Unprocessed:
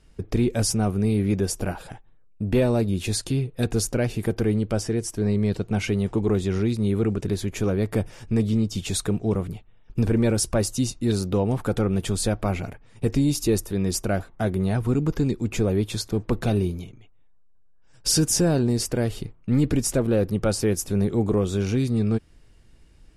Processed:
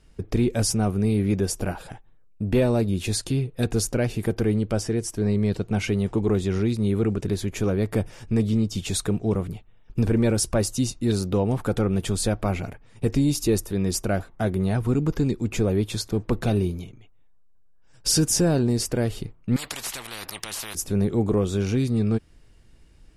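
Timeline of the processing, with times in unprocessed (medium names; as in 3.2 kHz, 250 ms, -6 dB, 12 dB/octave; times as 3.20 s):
19.56–20.75 s: spectrum-flattening compressor 10:1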